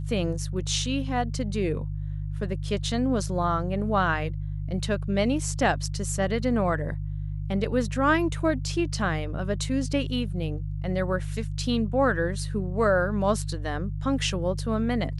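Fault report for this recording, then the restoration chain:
hum 50 Hz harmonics 3 -31 dBFS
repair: de-hum 50 Hz, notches 3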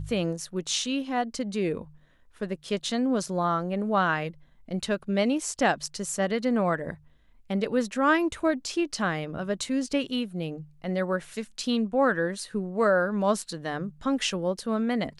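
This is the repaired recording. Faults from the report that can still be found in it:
nothing left

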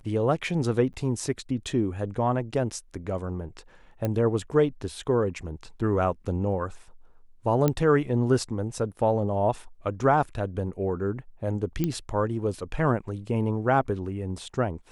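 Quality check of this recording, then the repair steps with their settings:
0.93–0.94 s: dropout 9.6 ms
4.05 s: pop -15 dBFS
7.68 s: pop -10 dBFS
11.84 s: pop -13 dBFS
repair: de-click; interpolate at 0.93 s, 9.6 ms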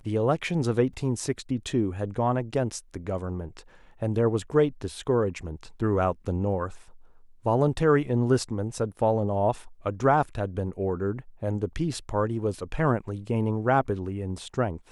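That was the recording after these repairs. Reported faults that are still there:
nothing left

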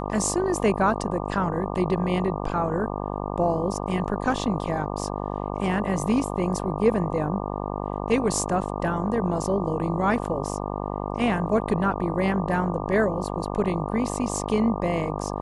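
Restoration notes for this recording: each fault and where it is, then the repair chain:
buzz 50 Hz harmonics 24 -30 dBFS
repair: de-hum 50 Hz, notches 24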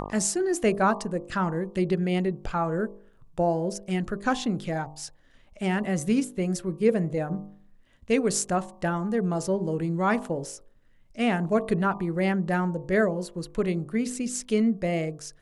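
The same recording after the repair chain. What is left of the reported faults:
nothing left

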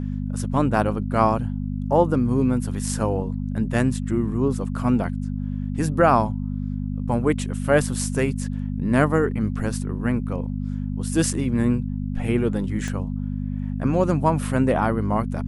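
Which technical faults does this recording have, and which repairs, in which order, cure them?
hum 50 Hz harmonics 5 -27 dBFS
12.88 s: pop -18 dBFS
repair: de-click; de-hum 50 Hz, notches 5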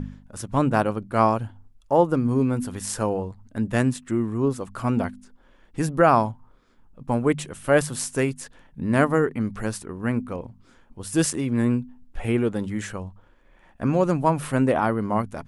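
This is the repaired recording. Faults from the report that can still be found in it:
12.88 s: pop

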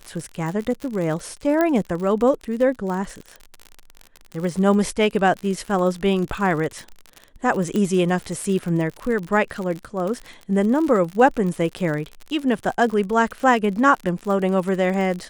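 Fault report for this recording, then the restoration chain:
crackle 53 per s -27 dBFS
1.61 s: pop -8 dBFS
7.76 s: pop -12 dBFS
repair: de-click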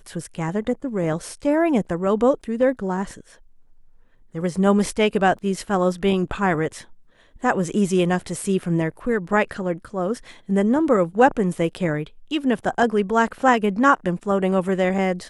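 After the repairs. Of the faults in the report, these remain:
nothing left

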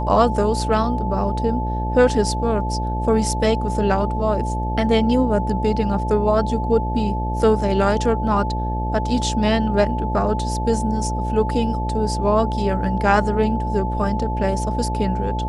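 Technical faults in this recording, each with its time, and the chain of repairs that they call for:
buzz 60 Hz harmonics 13 -24 dBFS
whine 870 Hz -26 dBFS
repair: band-stop 870 Hz, Q 30; de-hum 60 Hz, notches 13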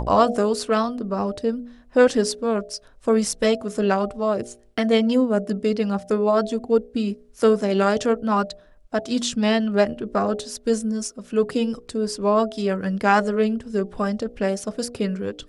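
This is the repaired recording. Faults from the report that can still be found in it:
nothing left

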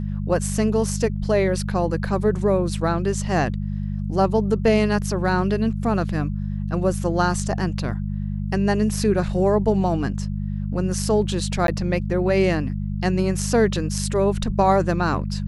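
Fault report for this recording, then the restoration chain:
hum 50 Hz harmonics 4 -26 dBFS
11.67–11.68 s: dropout 12 ms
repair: de-hum 50 Hz, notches 4; interpolate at 11.67 s, 12 ms

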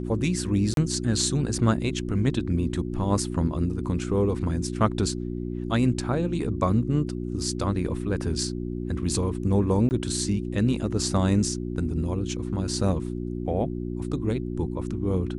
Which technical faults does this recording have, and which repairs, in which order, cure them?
hum 60 Hz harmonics 6 -31 dBFS
0.74–0.77 s: dropout 32 ms
9.89–9.91 s: dropout 19 ms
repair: de-hum 60 Hz, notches 6; interpolate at 0.74 s, 32 ms; interpolate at 9.89 s, 19 ms

